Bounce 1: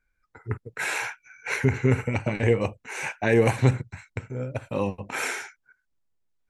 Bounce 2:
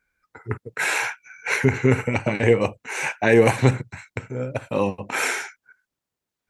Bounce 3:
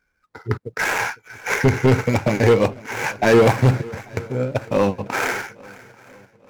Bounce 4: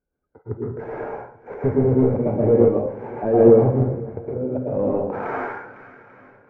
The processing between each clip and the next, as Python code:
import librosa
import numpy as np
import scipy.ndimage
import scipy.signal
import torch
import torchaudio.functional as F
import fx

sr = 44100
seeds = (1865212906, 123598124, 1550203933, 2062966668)

y1 = fx.highpass(x, sr, hz=160.0, slope=6)
y1 = y1 * 10.0 ** (5.5 / 20.0)
y2 = scipy.signal.medfilt(y1, 15)
y2 = np.clip(10.0 ** (14.5 / 20.0) * y2, -1.0, 1.0) / 10.0 ** (14.5 / 20.0)
y2 = fx.echo_swing(y2, sr, ms=840, ratio=1.5, feedback_pct=37, wet_db=-22.0)
y2 = y2 * 10.0 ** (5.5 / 20.0)
y3 = fx.filter_sweep_lowpass(y2, sr, from_hz=550.0, to_hz=1500.0, start_s=4.81, end_s=5.59, q=1.3)
y3 = fx.rev_plate(y3, sr, seeds[0], rt60_s=0.55, hf_ratio=0.6, predelay_ms=100, drr_db=-4.5)
y3 = y3 * 10.0 ** (-7.5 / 20.0)